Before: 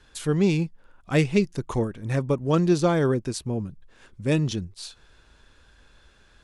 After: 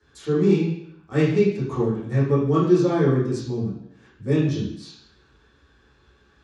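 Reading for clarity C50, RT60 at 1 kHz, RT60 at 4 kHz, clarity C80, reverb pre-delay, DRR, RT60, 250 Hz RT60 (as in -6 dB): 2.0 dB, 0.70 s, 0.70 s, 6.0 dB, 9 ms, -11.0 dB, 0.70 s, 0.80 s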